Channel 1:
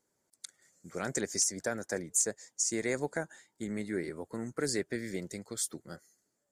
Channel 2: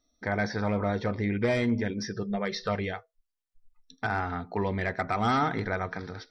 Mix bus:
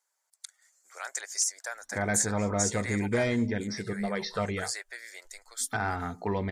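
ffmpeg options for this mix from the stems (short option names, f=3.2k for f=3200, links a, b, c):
-filter_complex "[0:a]highpass=f=770:w=0.5412,highpass=f=770:w=1.3066,acontrast=34,volume=-4dB[a];[1:a]adelay=1700,volume=-1dB[b];[a][b]amix=inputs=2:normalize=0"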